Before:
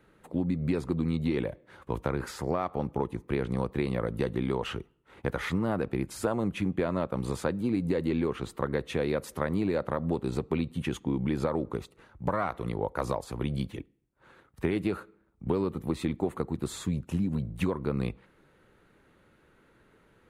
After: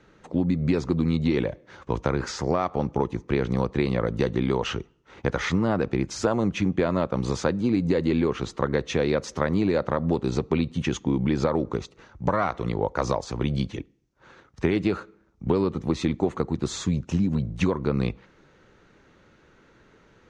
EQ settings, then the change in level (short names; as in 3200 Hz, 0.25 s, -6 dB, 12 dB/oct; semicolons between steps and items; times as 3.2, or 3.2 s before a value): synth low-pass 6100 Hz, resonance Q 3.8; air absorption 59 m; +5.5 dB